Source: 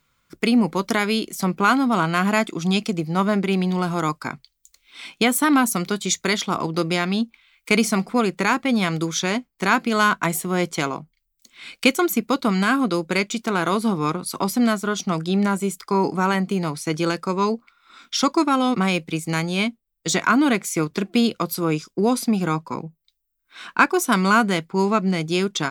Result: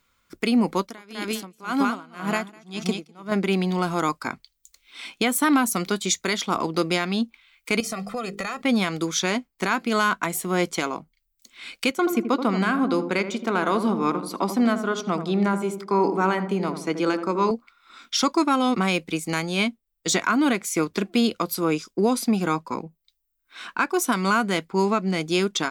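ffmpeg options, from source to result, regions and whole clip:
-filter_complex "[0:a]asettb=1/sr,asplit=3[a][b][c];[a]atrim=end=0.774[d];[b]atrim=start=0.77:end=3.32,asetpts=PTS-STARTPTS,afade=t=in:d=0.004:c=qsin,afade=t=out:st=2.546:d=0.004:c=qsin,aecho=1:1:202|404|606:0.562|0.0956|0.0163,atrim=end_sample=112455,aeval=exprs='val(0)*pow(10,-27*(0.5-0.5*cos(2*PI*1.9*n/s))/20)':c=same[e];[c]atrim=start=3.316[f];[d][e]acrossfade=d=0.004:c1=hsin:c2=qsin[g];[g][f]acrossfade=d=0.004:c1=qsin:c2=hsin,asettb=1/sr,asplit=3[h][i][j];[h]atrim=end=7.804[k];[i]atrim=start=7.8:end=8.62,asetpts=PTS-STARTPTS,afade=t=in:d=0.004:c=qsin,afade=t=out:st=0.816:d=0.004:c=qsin,bandreject=f=50:t=h:w=6,bandreject=f=100:t=h:w=6,bandreject=f=150:t=h:w=6,bandreject=f=200:t=h:w=6,bandreject=f=250:t=h:w=6,bandreject=f=300:t=h:w=6,bandreject=f=350:t=h:w=6,bandreject=f=400:t=h:w=6,bandreject=f=450:t=h:w=6,aecho=1:1:1.6:0.85,atrim=end_sample=36162,acompressor=threshold=-25dB:ratio=8:attack=3.2:release=140:knee=1:detection=peak[l];[j]atrim=start=8.616[m];[k][l]acrossfade=d=0.004:c1=hsin:c2=qsin[n];[n][m]acrossfade=d=0.004:c1=qsin:c2=hsin,asettb=1/sr,asplit=3[o][p][q];[o]atrim=end=11.904[r];[p]atrim=start=11.9:end=17.51,asetpts=PTS-STARTPTS,afade=t=in:d=0.004:c=qsin,afade=t=out:st=5.606:d=0.004:c=qsin,highpass=160,highshelf=f=4.1k:g=-10.5,asplit=2[s][t];[t]adelay=80,lowpass=f=850:p=1,volume=-7dB,asplit=2[u][v];[v]adelay=80,lowpass=f=850:p=1,volume=0.54,asplit=2[w][x];[x]adelay=80,lowpass=f=850:p=1,volume=0.54,asplit=2[y][z];[z]adelay=80,lowpass=f=850:p=1,volume=0.54,asplit=2[aa][ab];[ab]adelay=80,lowpass=f=850:p=1,volume=0.54,asplit=2[ac][ad];[ad]adelay=80,lowpass=f=850:p=1,volume=0.54,asplit=2[ae][af];[af]adelay=80,lowpass=f=850:p=1,volume=0.54[ag];[s][u][w][y][aa][ac][ae][ag]amix=inputs=8:normalize=0,atrim=end_sample=247401[ah];[q]atrim=start=17.506[ai];[r][ah]acrossfade=d=0.004:c1=hsin:c2=qsin[aj];[aj][ai]acrossfade=d=0.004:c1=qsin:c2=hsin,equalizer=f=140:t=o:w=0.41:g=-11.5,alimiter=limit=-10dB:level=0:latency=1:release=238"

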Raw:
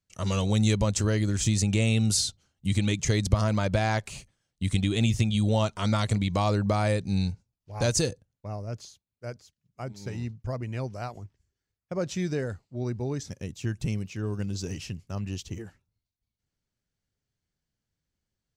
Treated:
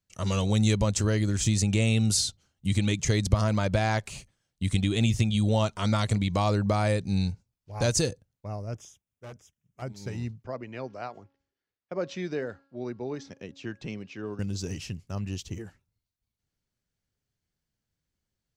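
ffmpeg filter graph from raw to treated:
-filter_complex "[0:a]asettb=1/sr,asplit=3[a][b][c];[a]atrim=end=8.744[d];[b]atrim=start=8.74:end=9.82,asetpts=PTS-STARTPTS,afade=t=in:d=0.004:c=qsin,afade=t=out:st=1.076:d=0.004:c=qsin,asuperstop=centerf=4300:order=4:qfactor=2.3,asoftclip=type=hard:threshold=-39.5dB[e];[c]atrim=start=9.816[f];[d][e]acrossfade=d=0.004:c1=hsin:c2=qsin[g];[g][f]acrossfade=d=0.004:c1=qsin:c2=hsin,asettb=1/sr,asplit=3[h][i][j];[h]atrim=end=10.444[k];[i]atrim=start=10.44:end=14.39,asetpts=PTS-STARTPTS,afade=t=in:d=0.004:c=qsin,afade=t=out:st=3.946:d=0.004:c=qsin,lowpass=7.6k,acrossover=split=210 5000:gain=0.158 1 0.126[l][m][n];[l][m][n]amix=inputs=3:normalize=0,bandreject=f=275.4:t=h:w=4,bandreject=f=550.8:t=h:w=4,bandreject=f=826.2:t=h:w=4,bandreject=f=1.1016k:t=h:w=4,bandreject=f=1.377k:t=h:w=4,bandreject=f=1.6524k:t=h:w=4[o];[j]atrim=start=14.386[p];[k][o]acrossfade=d=0.004:c1=hsin:c2=qsin[q];[q][p]acrossfade=d=0.004:c1=qsin:c2=hsin"

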